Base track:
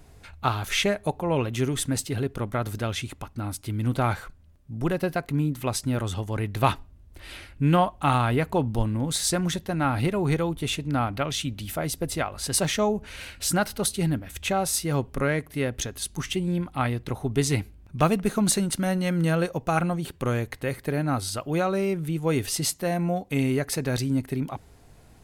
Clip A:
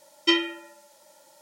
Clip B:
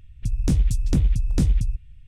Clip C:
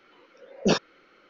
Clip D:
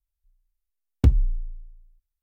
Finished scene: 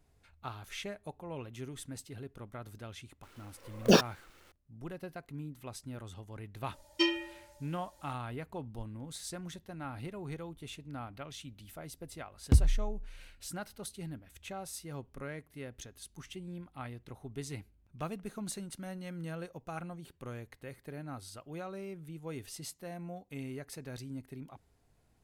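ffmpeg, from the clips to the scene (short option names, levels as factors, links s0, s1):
-filter_complex "[0:a]volume=0.133[s0];[3:a]acrusher=bits=7:dc=4:mix=0:aa=0.000001[s1];[1:a]aecho=1:1:3.3:1[s2];[s1]atrim=end=1.29,asetpts=PTS-STARTPTS,afade=t=in:d=0.004:c=hsin,afade=t=out:st=1.286:d=0.004:c=hsin,adelay=3230[s3];[s2]atrim=end=1.41,asetpts=PTS-STARTPTS,volume=0.282,afade=t=in:d=0.004:c=hsin,afade=t=out:st=1.406:d=0.004:c=hsin,adelay=6720[s4];[4:a]atrim=end=2.22,asetpts=PTS-STARTPTS,volume=0.501,afade=t=in:d=0.004:c=hsin,afade=t=out:st=2.216:d=0.004:c=hsin,adelay=11480[s5];[s0][s3][s4][s5]amix=inputs=4:normalize=0"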